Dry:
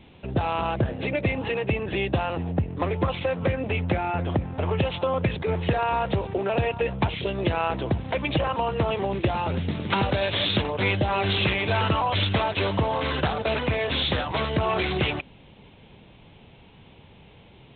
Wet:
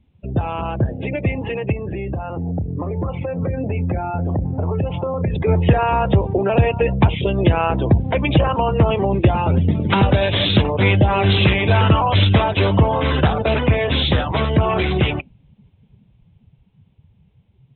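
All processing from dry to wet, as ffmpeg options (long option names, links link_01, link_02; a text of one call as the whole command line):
ffmpeg -i in.wav -filter_complex "[0:a]asettb=1/sr,asplit=3[link_01][link_02][link_03];[link_01]atrim=end=1.724[link_04];[link_02]atrim=start=1.72:end=5.35,asetpts=PTS-STARTPTS,afade=type=in:duration=0.004:curve=qsin,afade=type=out:start_time=3.626:duration=0.004:curve=qsin,lowpass=2200,asplit=2[link_05][link_06];[link_06]adelay=30,volume=-12dB[link_07];[link_05][link_07]amix=inputs=2:normalize=0,atrim=end_sample=160083,acompressor=threshold=-27dB:ratio=4:attack=3.2:release=140:knee=1:detection=peak[link_08];[link_03]atrim=start=5.346[link_09];[link_04][link_08]acrossfade=duration=0.004:curve1=hsin:curve2=qsin[link_10];[link_10][link_09]acrossfade=duration=0.004:curve1=qsin:curve2=hsin,afftdn=noise_reduction=20:noise_floor=-36,lowshelf=frequency=260:gain=7.5,dynaudnorm=framelen=470:gausssize=13:maxgain=8dB" out.wav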